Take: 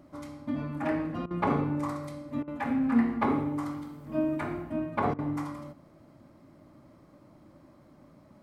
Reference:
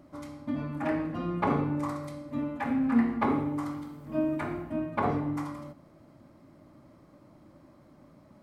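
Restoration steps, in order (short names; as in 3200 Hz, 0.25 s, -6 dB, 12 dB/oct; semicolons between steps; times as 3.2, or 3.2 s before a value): interpolate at 1.26/2.43/5.14, 45 ms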